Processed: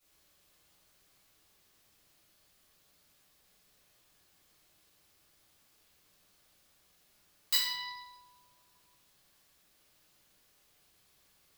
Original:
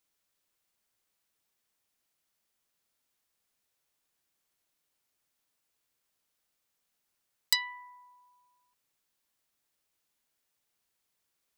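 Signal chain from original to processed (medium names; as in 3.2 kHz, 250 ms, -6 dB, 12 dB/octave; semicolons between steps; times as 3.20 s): compression, threshold -36 dBFS, peak gain reduction 15 dB; reverberation RT60 0.90 s, pre-delay 3 ms, DRR -13.5 dB; trim -4 dB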